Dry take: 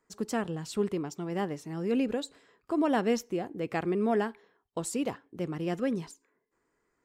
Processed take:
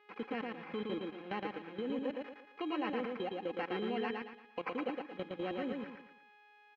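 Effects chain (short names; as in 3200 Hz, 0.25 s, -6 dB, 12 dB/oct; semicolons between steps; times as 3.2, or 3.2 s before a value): sample-and-hold 13×; comb 4 ms, depth 53%; buzz 400 Hz, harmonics 32, -53 dBFS -3 dB/oct; speaker cabinet 260–2600 Hz, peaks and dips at 270 Hz -3 dB, 590 Hz -6 dB, 2200 Hz +4 dB; level quantiser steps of 18 dB; speed mistake 24 fps film run at 25 fps; compressor 1.5:1, threshold -56 dBFS, peak gain reduction 8.5 dB; feedback echo 0.114 s, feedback 35%, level -3 dB; gain +6.5 dB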